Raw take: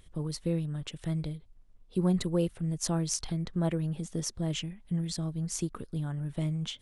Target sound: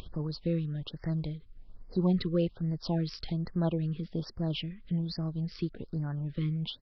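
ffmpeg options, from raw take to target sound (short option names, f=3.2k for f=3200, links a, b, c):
-af "acompressor=mode=upward:threshold=-34dB:ratio=2.5,aresample=11025,aresample=44100,afftfilt=real='re*(1-between(b*sr/1024,710*pow(3200/710,0.5+0.5*sin(2*PI*1.2*pts/sr))/1.41,710*pow(3200/710,0.5+0.5*sin(2*PI*1.2*pts/sr))*1.41))':imag='im*(1-between(b*sr/1024,710*pow(3200/710,0.5+0.5*sin(2*PI*1.2*pts/sr))/1.41,710*pow(3200/710,0.5+0.5*sin(2*PI*1.2*pts/sr))*1.41))':win_size=1024:overlap=0.75"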